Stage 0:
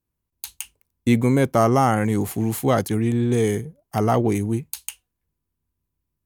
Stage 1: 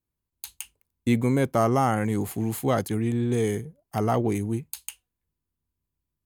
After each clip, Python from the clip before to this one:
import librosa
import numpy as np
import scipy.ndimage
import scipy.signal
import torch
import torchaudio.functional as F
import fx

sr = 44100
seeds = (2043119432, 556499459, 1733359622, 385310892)

y = fx.notch(x, sr, hz=5700.0, q=13.0)
y = F.gain(torch.from_numpy(y), -4.5).numpy()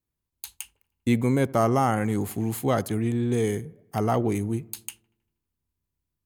y = fx.echo_wet_lowpass(x, sr, ms=79, feedback_pct=58, hz=1700.0, wet_db=-23.0)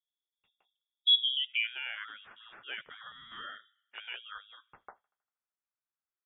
y = fx.filter_sweep_bandpass(x, sr, from_hz=230.0, to_hz=2200.0, start_s=1.11, end_s=1.74, q=3.3)
y = fx.freq_invert(y, sr, carrier_hz=3600)
y = fx.spec_gate(y, sr, threshold_db=-25, keep='strong')